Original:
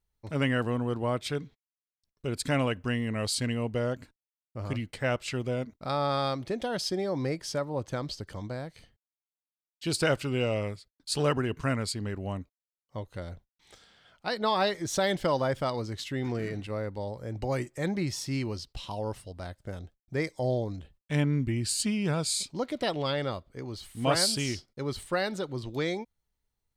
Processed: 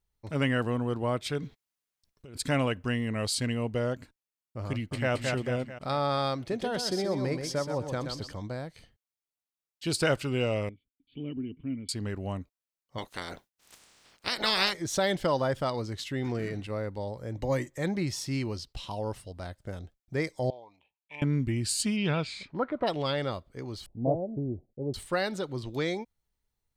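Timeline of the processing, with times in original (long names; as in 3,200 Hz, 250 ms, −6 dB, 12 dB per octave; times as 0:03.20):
0:01.39–0:02.38: compressor whose output falls as the input rises −42 dBFS
0:04.69–0:05.12: delay throw 220 ms, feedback 50%, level −3 dB
0:06.39–0:08.32: repeating echo 127 ms, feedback 27%, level −6.5 dB
0:10.69–0:11.89: formant resonators in series i
0:12.97–0:14.72: ceiling on every frequency bin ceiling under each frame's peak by 27 dB
0:15.25–0:15.67: notch filter 2,200 Hz
0:17.35–0:17.78: EQ curve with evenly spaced ripples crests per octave 1.1, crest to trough 7 dB
0:20.50–0:21.22: pair of resonant band-passes 1,500 Hz, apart 1.4 octaves
0:21.96–0:22.86: low-pass with resonance 3,800 Hz → 1,100 Hz, resonance Q 3.1
0:23.86–0:24.94: Butterworth low-pass 740 Hz 48 dB per octave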